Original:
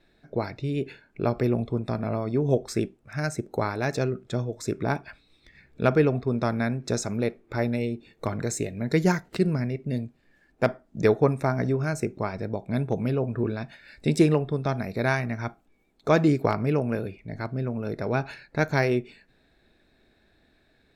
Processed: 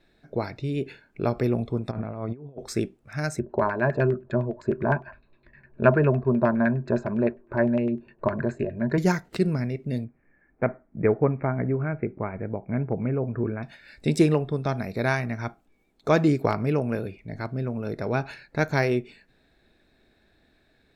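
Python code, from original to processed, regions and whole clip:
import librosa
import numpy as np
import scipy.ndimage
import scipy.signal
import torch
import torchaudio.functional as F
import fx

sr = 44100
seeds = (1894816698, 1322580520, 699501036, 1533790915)

y = fx.chain(x, sr, fx.peak_eq(hz=350.0, db=-3.0, octaves=2.7),
    fx.over_compress(threshold_db=-33.0, ratio=-0.5),
    fx.gaussian_blur(sigma=3.2), at=(1.91, 2.59))
y = fx.chain(y, sr, fx.ripple_eq(per_octave=1.4, db=11),
    fx.filter_lfo_lowpass(shape='saw_down', hz=9.8, low_hz=710.0, high_hz=2200.0, q=1.7), at=(3.39, 8.98))
y = fx.chain(y, sr, fx.cheby1_lowpass(hz=2300.0, order=5),
    fx.dynamic_eq(hz=1400.0, q=0.72, threshold_db=-33.0, ratio=4.0, max_db=-3), at=(10.04, 13.63))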